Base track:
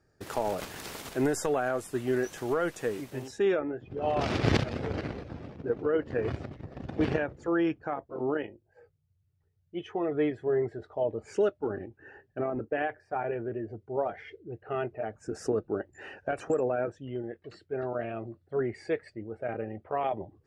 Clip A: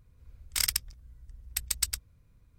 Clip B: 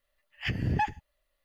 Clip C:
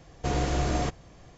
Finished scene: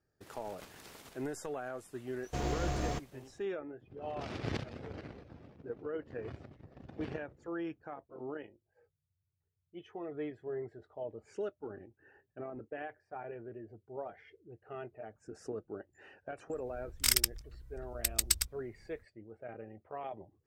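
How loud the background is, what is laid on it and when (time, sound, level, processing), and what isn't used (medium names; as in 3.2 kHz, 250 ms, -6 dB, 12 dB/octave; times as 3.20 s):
base track -12 dB
2.09 s: add C -7 dB + companding laws mixed up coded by A
16.48 s: add A, fades 0.05 s
not used: B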